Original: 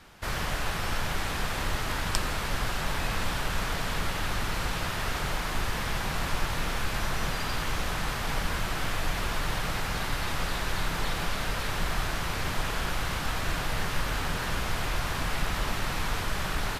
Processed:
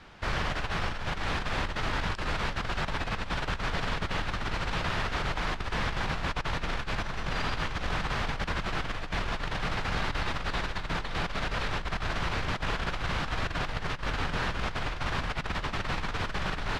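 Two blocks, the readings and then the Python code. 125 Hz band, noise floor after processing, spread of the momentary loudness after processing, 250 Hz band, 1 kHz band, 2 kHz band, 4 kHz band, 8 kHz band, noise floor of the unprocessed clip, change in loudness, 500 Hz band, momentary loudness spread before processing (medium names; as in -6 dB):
-1.0 dB, -37 dBFS, 2 LU, -0.5 dB, -0.5 dB, -0.5 dB, -2.5 dB, -10.0 dB, -32 dBFS, -1.5 dB, -0.5 dB, 1 LU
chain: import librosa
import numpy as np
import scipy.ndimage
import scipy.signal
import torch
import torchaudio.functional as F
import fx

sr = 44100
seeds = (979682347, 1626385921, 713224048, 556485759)

y = scipy.signal.sosfilt(scipy.signal.butter(2, 4400.0, 'lowpass', fs=sr, output='sos'), x)
y = fx.over_compress(y, sr, threshold_db=-30.0, ratio=-0.5)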